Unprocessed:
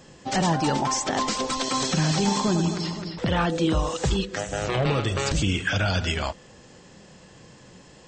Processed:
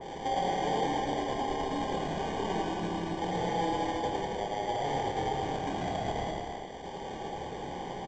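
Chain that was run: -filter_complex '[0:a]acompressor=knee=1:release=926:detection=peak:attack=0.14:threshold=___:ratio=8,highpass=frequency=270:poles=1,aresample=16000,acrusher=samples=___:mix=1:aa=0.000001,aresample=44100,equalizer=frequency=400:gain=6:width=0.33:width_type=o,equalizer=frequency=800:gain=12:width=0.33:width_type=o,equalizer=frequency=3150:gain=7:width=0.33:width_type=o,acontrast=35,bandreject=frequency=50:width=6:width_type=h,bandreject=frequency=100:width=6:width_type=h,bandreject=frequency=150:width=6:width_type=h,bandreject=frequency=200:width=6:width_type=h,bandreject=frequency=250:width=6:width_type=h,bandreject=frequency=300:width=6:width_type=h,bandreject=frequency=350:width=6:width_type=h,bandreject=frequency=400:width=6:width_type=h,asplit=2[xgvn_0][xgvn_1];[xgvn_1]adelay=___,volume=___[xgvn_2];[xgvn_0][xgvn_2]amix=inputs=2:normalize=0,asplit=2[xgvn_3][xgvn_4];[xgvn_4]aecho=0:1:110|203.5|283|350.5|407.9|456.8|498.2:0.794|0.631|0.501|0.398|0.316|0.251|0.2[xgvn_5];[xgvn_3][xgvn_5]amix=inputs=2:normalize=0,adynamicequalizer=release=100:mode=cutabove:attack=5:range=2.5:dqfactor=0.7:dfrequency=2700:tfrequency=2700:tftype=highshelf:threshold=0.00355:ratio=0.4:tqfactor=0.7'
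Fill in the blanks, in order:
-36dB, 12, 28, -7dB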